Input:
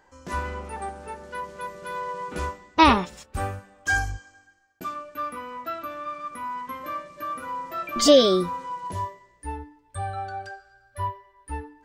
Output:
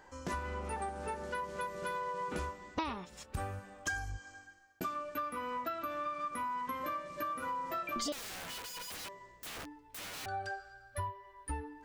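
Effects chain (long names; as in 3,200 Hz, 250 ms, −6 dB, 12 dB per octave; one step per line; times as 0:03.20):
downward compressor 16 to 1, threshold −36 dBFS, peak gain reduction 26 dB
0:08.12–0:10.26: wrap-around overflow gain 41 dB
level +1.5 dB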